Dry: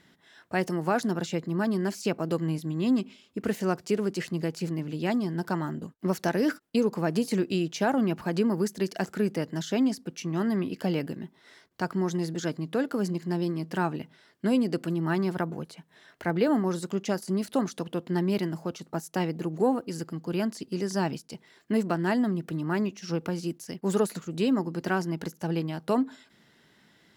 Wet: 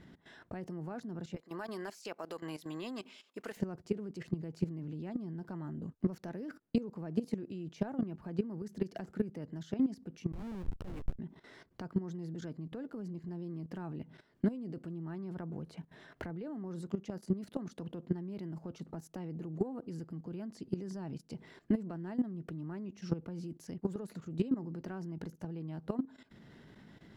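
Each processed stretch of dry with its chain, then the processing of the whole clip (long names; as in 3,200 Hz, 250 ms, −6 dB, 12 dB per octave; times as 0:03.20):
0:01.36–0:03.57: high-pass filter 750 Hz + high-shelf EQ 4,600 Hz +7 dB
0:10.32–0:11.19: high-pass filter 1,200 Hz 6 dB per octave + comparator with hysteresis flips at −37 dBFS + downward compressor 5 to 1, threshold −42 dBFS
whole clip: downward compressor 4 to 1, threshold −38 dBFS; spectral tilt −3 dB per octave; output level in coarse steps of 15 dB; level +4 dB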